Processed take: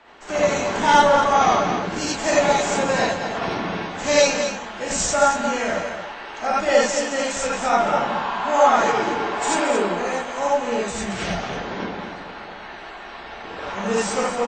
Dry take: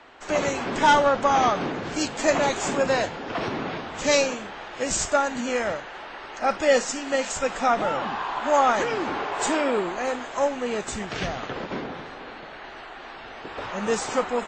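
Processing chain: delay 222 ms -8.5 dB; gated-style reverb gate 110 ms rising, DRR -5 dB; trim -3 dB

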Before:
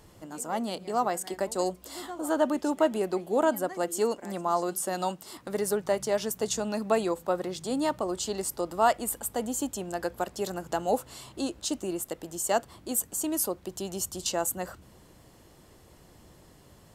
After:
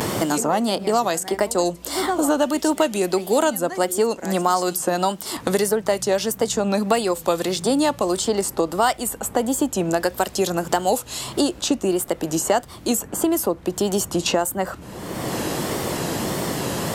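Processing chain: vibrato 1.6 Hz 99 cents; three bands compressed up and down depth 100%; trim +8 dB

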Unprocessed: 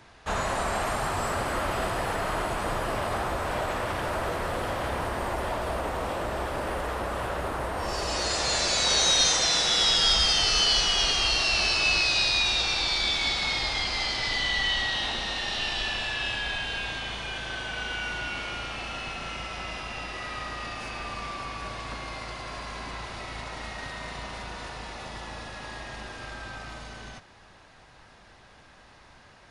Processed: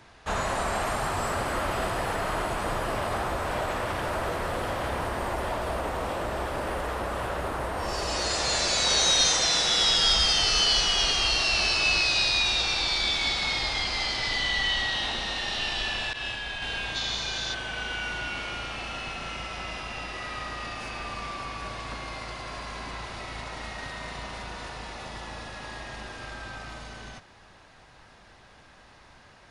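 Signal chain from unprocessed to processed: 16.13–16.62 s: expander -26 dBFS; 16.96–17.54 s: time-frequency box 3.4–7.4 kHz +11 dB

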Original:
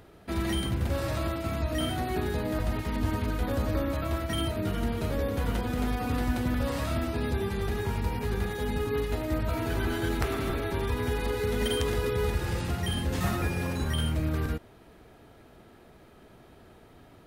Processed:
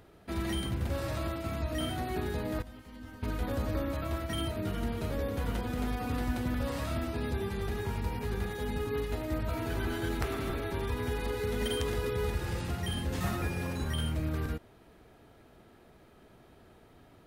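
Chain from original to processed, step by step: 2.62–3.23 s: feedback comb 260 Hz, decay 0.27 s, harmonics all, mix 90%; trim -4 dB

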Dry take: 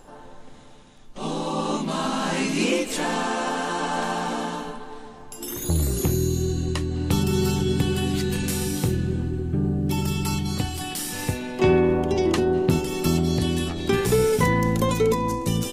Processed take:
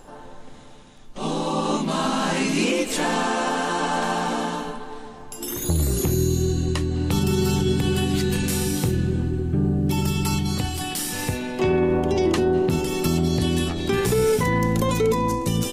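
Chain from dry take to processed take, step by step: peak limiter -14.5 dBFS, peak gain reduction 7 dB; trim +2.5 dB

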